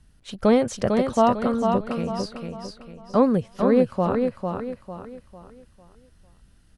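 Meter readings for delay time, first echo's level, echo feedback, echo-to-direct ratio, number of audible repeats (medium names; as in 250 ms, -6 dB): 450 ms, -5.0 dB, 37%, -4.5 dB, 4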